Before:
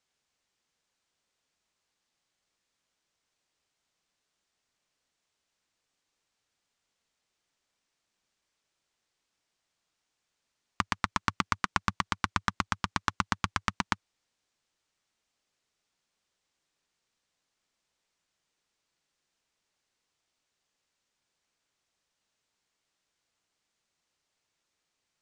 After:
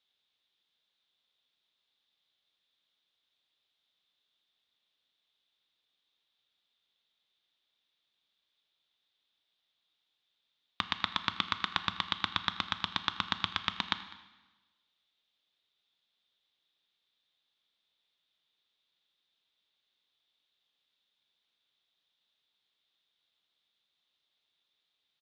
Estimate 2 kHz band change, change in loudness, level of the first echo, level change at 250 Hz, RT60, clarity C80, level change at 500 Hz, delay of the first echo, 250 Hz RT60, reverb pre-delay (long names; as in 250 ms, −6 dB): −3.5 dB, −1.5 dB, −21.5 dB, −7.5 dB, 1.2 s, 13.5 dB, −6.0 dB, 202 ms, 1.2 s, 7 ms